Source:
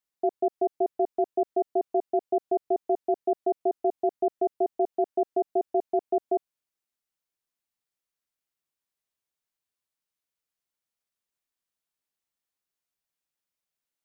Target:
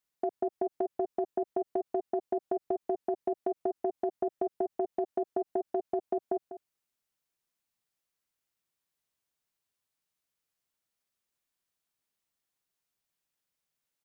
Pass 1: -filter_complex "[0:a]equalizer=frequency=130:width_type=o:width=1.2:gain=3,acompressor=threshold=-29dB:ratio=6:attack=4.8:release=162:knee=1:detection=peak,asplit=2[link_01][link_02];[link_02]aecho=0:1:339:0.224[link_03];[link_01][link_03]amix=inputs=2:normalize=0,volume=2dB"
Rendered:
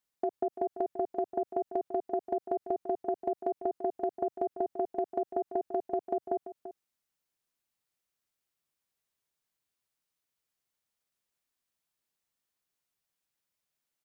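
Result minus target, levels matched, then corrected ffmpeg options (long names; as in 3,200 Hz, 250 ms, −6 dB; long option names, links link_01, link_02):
echo 142 ms late
-filter_complex "[0:a]equalizer=frequency=130:width_type=o:width=1.2:gain=3,acompressor=threshold=-29dB:ratio=6:attack=4.8:release=162:knee=1:detection=peak,asplit=2[link_01][link_02];[link_02]aecho=0:1:197:0.224[link_03];[link_01][link_03]amix=inputs=2:normalize=0,volume=2dB"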